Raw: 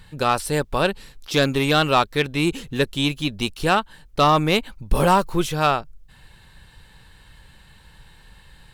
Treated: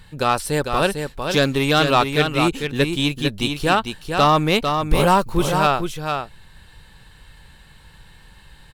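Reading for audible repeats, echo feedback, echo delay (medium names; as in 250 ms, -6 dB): 1, no regular repeats, 450 ms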